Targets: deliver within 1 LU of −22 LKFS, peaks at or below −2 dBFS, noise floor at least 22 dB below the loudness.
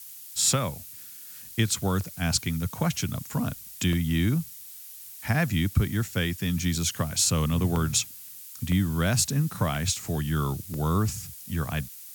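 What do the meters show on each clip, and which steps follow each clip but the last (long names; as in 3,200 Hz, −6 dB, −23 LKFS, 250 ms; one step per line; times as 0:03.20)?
number of dropouts 6; longest dropout 1.3 ms; background noise floor −44 dBFS; target noise floor −49 dBFS; integrated loudness −27.0 LKFS; sample peak −9.0 dBFS; target loudness −22.0 LKFS
→ repair the gap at 0:02.01/0:03.93/0:07.76/0:08.72/0:09.75/0:10.74, 1.3 ms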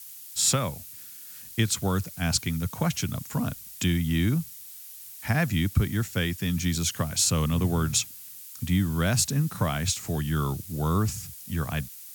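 number of dropouts 0; background noise floor −44 dBFS; target noise floor −49 dBFS
→ broadband denoise 6 dB, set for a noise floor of −44 dBFS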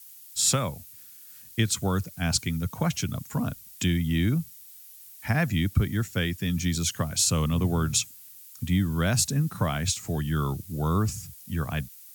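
background noise floor −48 dBFS; target noise floor −49 dBFS
→ broadband denoise 6 dB, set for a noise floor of −48 dBFS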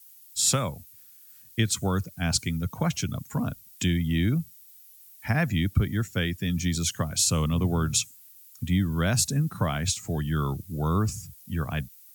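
background noise floor −52 dBFS; integrated loudness −27.0 LKFS; sample peak −9.5 dBFS; target loudness −22.0 LKFS
→ level +5 dB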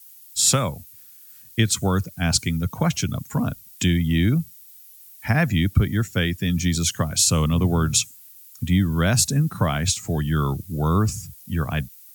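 integrated loudness −22.0 LKFS; sample peak −4.5 dBFS; background noise floor −47 dBFS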